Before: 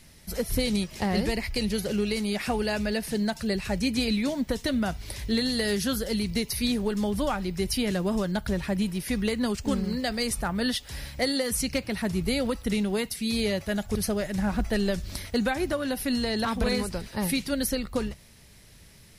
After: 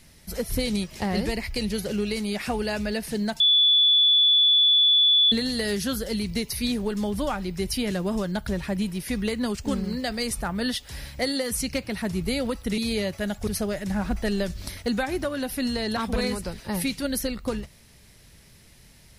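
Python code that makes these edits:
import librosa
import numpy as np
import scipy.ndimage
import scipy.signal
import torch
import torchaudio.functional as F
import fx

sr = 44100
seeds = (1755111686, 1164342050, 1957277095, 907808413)

y = fx.edit(x, sr, fx.bleep(start_s=3.4, length_s=1.92, hz=3450.0, db=-15.0),
    fx.cut(start_s=12.78, length_s=0.48), tone=tone)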